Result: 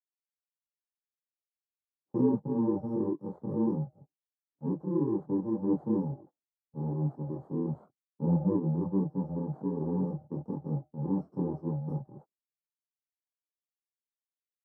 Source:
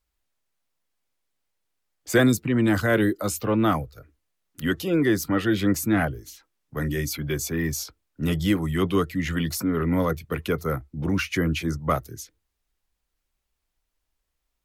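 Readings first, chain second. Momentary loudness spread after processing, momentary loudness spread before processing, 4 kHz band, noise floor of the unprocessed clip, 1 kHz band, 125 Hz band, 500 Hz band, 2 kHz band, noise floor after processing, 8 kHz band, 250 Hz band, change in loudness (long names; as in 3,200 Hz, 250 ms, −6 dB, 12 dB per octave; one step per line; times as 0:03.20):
10 LU, 10 LU, below −40 dB, −79 dBFS, −13.0 dB, −6.0 dB, −8.5 dB, below −40 dB, below −85 dBFS, below −40 dB, −6.0 dB, −7.5 dB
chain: samples in bit-reversed order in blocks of 64 samples
elliptic band-pass filter 140–800 Hz, stop band 50 dB
low-shelf EQ 370 Hz +5.5 dB
multi-voice chorus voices 6, 1 Hz, delay 24 ms, depth 3.6 ms
noise gate −47 dBFS, range −29 dB
level −3.5 dB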